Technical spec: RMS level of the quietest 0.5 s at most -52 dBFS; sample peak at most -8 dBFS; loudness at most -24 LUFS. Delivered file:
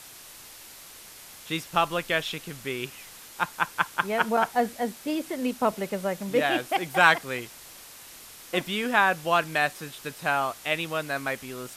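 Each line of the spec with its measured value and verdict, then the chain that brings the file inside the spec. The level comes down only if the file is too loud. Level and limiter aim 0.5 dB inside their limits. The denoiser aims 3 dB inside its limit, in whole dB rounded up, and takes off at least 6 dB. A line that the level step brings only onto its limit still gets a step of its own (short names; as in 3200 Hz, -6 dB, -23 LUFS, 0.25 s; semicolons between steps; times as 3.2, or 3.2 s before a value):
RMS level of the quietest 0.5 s -47 dBFS: fail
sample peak -3.5 dBFS: fail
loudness -26.5 LUFS: OK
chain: denoiser 8 dB, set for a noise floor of -47 dBFS; limiter -8.5 dBFS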